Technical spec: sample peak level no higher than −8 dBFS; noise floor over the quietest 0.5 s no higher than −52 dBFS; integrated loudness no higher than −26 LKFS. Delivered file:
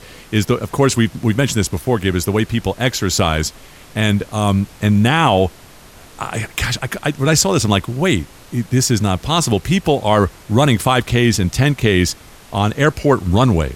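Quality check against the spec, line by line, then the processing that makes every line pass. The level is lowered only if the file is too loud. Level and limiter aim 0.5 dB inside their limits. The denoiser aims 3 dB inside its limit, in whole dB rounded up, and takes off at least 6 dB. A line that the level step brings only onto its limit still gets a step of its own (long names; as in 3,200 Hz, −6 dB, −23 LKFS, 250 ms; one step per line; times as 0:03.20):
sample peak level −2.0 dBFS: out of spec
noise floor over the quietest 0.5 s −41 dBFS: out of spec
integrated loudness −16.5 LKFS: out of spec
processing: broadband denoise 6 dB, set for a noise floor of −41 dBFS
level −10 dB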